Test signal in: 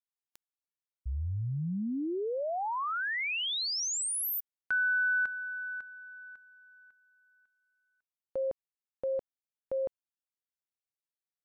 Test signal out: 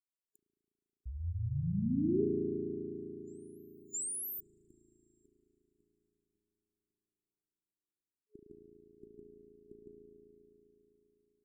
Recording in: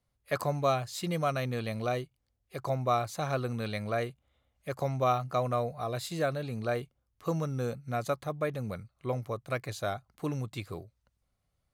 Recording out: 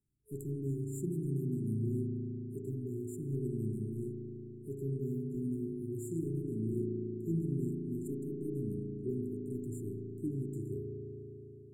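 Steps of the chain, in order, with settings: overdrive pedal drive 12 dB, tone 2300 Hz, clips at -14 dBFS; spring tank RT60 3.8 s, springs 36 ms, chirp 70 ms, DRR -2 dB; FFT band-reject 420–7000 Hz; gain -1.5 dB

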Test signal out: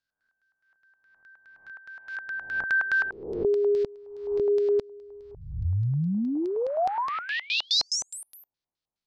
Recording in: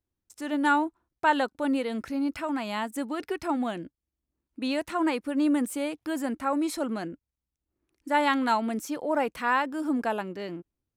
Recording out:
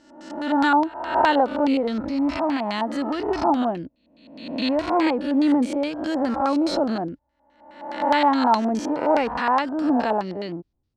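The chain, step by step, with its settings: spectral swells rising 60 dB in 0.86 s; low shelf 310 Hz +8.5 dB; LFO low-pass square 4.8 Hz 830–4600 Hz

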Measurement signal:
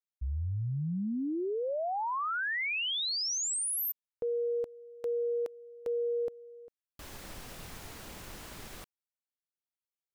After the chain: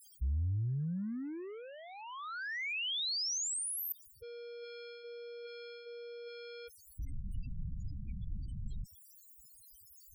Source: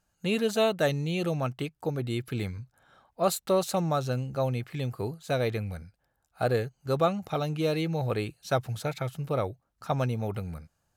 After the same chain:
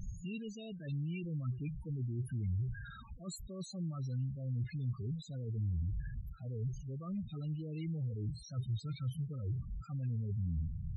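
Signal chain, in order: zero-crossing step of -31 dBFS; reverse; compressor, threshold -34 dBFS; reverse; passive tone stack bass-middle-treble 6-0-2; loudest bins only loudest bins 8; gain +15 dB

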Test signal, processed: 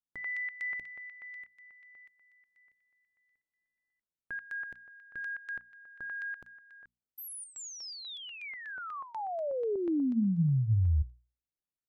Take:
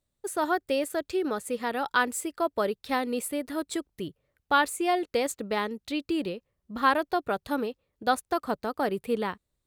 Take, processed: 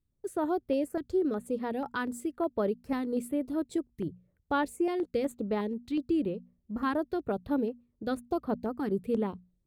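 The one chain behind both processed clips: tilt shelf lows +9 dB, about 640 Hz; notches 60/120/180/240 Hz; stepped notch 8.2 Hz 610–7500 Hz; gain -3.5 dB

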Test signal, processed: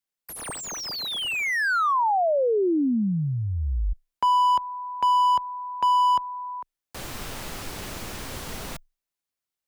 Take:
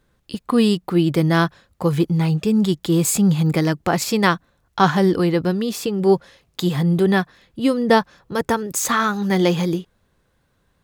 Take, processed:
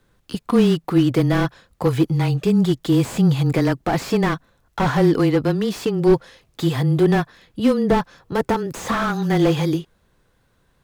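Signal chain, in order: dynamic EQ 120 Hz, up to -5 dB, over -32 dBFS, Q 1; frequency shift -18 Hz; slew limiter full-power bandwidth 91 Hz; gain +2.5 dB

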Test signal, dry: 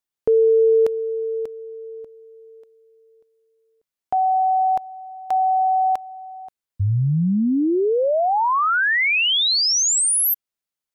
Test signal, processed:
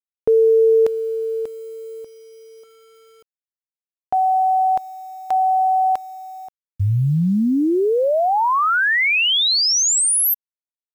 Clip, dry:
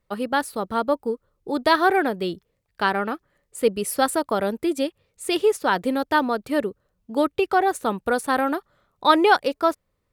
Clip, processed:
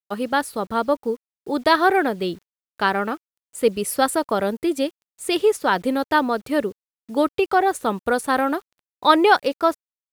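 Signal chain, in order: bit-crush 9-bit; gain +1.5 dB

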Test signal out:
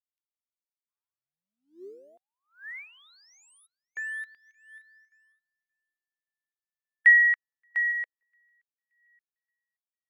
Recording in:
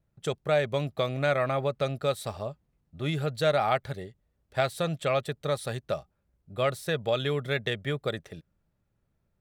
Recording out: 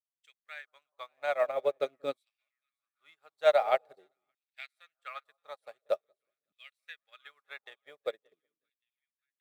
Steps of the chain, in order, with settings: bell 2200 Hz +3.5 dB 0.38 oct; in parallel at -10.5 dB: bit-crush 7-bit; on the sum: transient shaper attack +1 dB, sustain -3 dB; on a send: split-band echo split 1100 Hz, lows 0.185 s, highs 0.575 s, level -14.5 dB; on the sum: LFO high-pass saw down 0.46 Hz 260–3100 Hz; upward expander 2.5:1, over -40 dBFS; gain -4 dB

